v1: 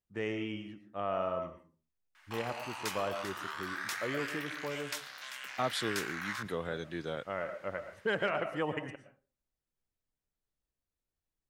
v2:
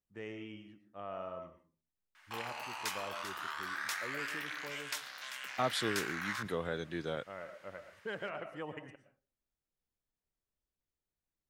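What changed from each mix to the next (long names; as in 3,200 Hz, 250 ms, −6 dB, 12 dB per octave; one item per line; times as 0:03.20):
first voice −9.0 dB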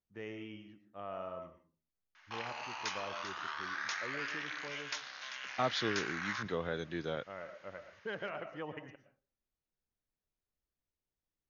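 master: add linear-phase brick-wall low-pass 6,800 Hz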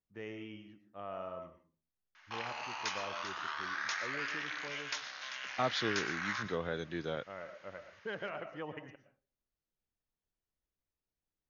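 background: send +8.5 dB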